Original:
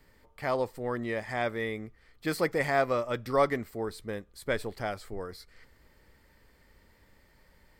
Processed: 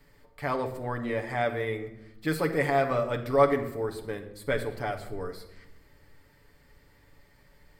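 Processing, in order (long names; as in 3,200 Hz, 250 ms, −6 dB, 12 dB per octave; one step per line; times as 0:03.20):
dynamic equaliser 5,700 Hz, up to −6 dB, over −56 dBFS, Q 1.4
on a send: convolution reverb RT60 0.90 s, pre-delay 7 ms, DRR 3 dB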